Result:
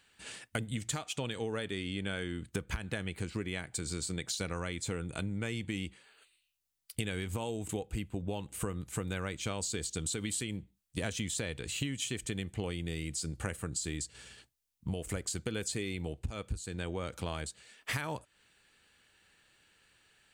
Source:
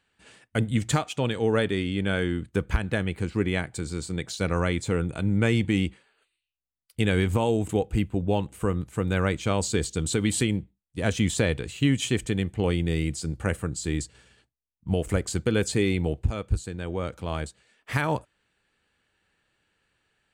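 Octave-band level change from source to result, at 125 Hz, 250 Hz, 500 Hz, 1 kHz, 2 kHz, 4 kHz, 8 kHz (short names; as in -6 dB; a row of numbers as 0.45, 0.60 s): -12.0, -12.0, -12.5, -11.0, -9.0, -5.5, -3.0 dB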